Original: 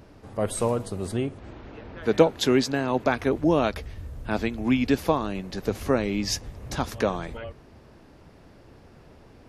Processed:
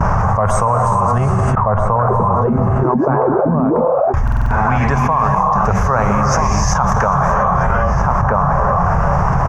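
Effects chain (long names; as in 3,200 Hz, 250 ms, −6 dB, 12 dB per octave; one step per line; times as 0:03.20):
reverb whose tail is shaped and stops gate 430 ms rising, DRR 1.5 dB
0:01.55–0:04.14: envelope filter 230–1,700 Hz, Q 19, down, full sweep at −15 dBFS
drawn EQ curve 180 Hz 0 dB, 280 Hz −22 dB, 780 Hz +6 dB, 1,100 Hz +12 dB, 4,100 Hz −26 dB, 6,100 Hz −3 dB, 10,000 Hz −22 dB
square-wave tremolo 0.72 Hz, depth 60%, duty 85%
low-shelf EQ 260 Hz +4 dB
noise gate with hold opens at −41 dBFS
slap from a distant wall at 220 metres, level −12 dB
buffer that repeats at 0:04.23, samples 2,048, times 5
envelope flattener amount 100%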